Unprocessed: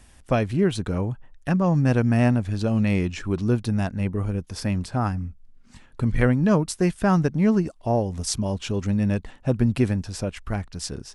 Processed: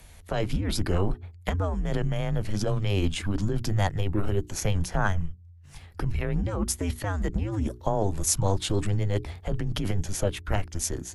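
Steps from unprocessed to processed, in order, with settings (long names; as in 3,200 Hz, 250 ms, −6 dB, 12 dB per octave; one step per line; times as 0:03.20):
frequency shifter −98 Hz
compressor whose output falls as the input rises −24 dBFS, ratio −1
formants moved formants +4 semitones
mains-hum notches 60/120/180/240/300/360/420 Hz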